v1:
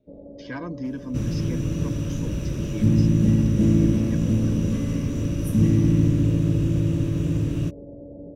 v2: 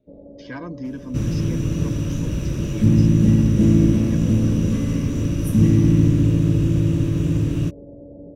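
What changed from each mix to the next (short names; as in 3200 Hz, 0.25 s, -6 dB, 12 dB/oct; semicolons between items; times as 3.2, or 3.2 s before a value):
second sound +3.5 dB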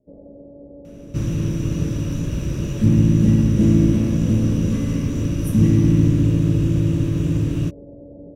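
speech: muted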